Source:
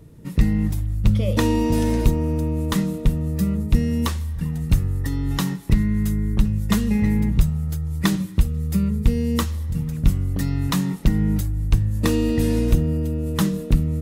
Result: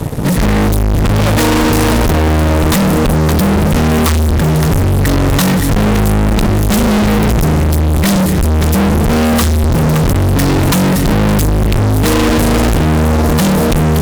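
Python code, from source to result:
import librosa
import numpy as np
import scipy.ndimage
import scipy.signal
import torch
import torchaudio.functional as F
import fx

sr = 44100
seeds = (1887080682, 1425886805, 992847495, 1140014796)

y = x + 10.0 ** (-15.0 / 20.0) * np.pad(x, (int(567 * sr / 1000.0), 0))[:len(x)]
y = fx.fuzz(y, sr, gain_db=43.0, gate_db=-48.0)
y = y * librosa.db_to_amplitude(3.5)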